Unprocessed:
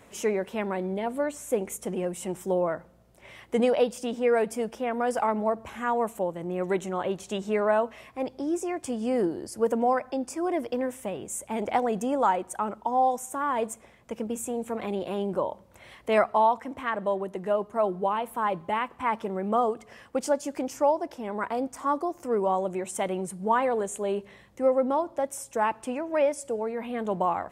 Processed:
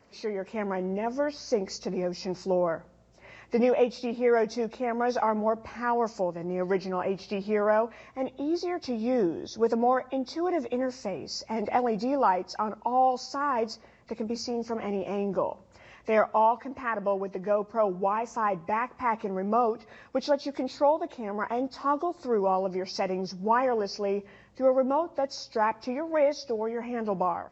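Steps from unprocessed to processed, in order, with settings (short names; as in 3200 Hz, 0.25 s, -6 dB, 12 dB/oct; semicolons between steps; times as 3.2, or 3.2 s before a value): nonlinear frequency compression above 1900 Hz 1.5:1; AGC gain up to 7 dB; gain -7 dB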